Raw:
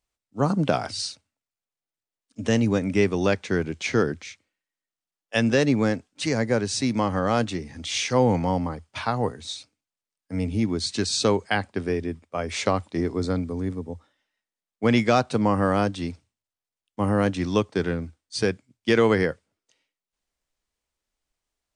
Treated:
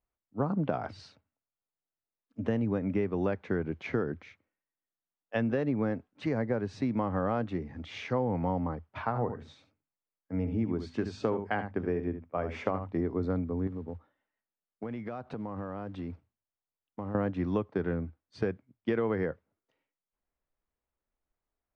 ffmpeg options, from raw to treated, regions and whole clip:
-filter_complex "[0:a]asettb=1/sr,asplit=3[s0][s1][s2];[s0]atrim=end=9.024[s3];[s1]atrim=start=9.02:end=12.93,asetpts=PTS-STARTPTS,afade=t=in:d=0.004:c=qsin,afade=t=out:st=3.906:d=0.004:c=qsin,equalizer=f=4000:t=o:w=0.21:g=-8.5,bandreject=f=50:t=h:w=6,bandreject=f=100:t=h:w=6,bandreject=f=150:t=h:w=6,bandreject=f=200:t=h:w=6,bandreject=f=250:t=h:w=6,aecho=1:1:73:0.282,atrim=end_sample=172431[s4];[s2]atrim=start=12.926[s5];[s3][s4]acrossfade=d=0.004:c1=hsin:c2=qsin[s6];[s6][s5]acrossfade=d=0.004:c1=qsin:c2=hsin,asettb=1/sr,asplit=3[s7][s8][s9];[s7]atrim=end=13.674[s10];[s8]atrim=start=13.67:end=17.15,asetpts=PTS-STARTPTS,afade=t=in:d=0.004:c=qsin,afade=t=out:st=3.476:d=0.004:c=qsin,acompressor=threshold=0.0316:ratio=20:attack=3.2:release=140:knee=1:detection=peak,acrusher=bits=6:mode=log:mix=0:aa=0.000001[s11];[s9]atrim=start=17.146[s12];[s10][s11]acrossfade=d=0.004:c1=hsin:c2=qsin[s13];[s13][s12]acrossfade=d=0.004:c1=qsin:c2=hsin,lowpass=1500,acompressor=threshold=0.0708:ratio=6,volume=0.75"

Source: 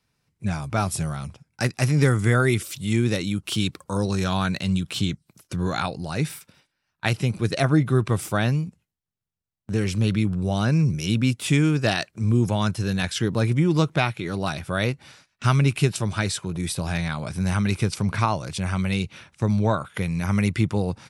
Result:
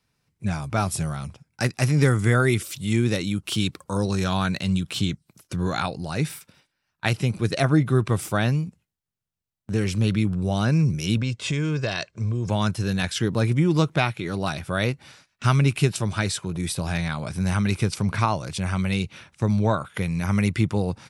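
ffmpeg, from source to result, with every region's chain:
-filter_complex "[0:a]asettb=1/sr,asplit=3[s0][s1][s2];[s0]atrim=end=11.174[s3];[s1]atrim=start=11.17:end=12.5,asetpts=PTS-STARTPTS,afade=t=in:d=0.004:c=qsin,afade=t=out:st=1.326:d=0.004:c=qsin,lowpass=f=7200:w=0.5412,lowpass=f=7200:w=1.3066,aecho=1:1:1.9:0.44,atrim=end_sample=58653,acompressor=threshold=0.0891:ratio=6:attack=3.2:release=140:knee=1:detection=peak[s4];[s2]atrim=start=12.496[s5];[s3][s4]acrossfade=d=0.004:c1=hsin:c2=qsin[s6];[s6][s5]acrossfade=d=0.004:c1=qsin:c2=hsin"

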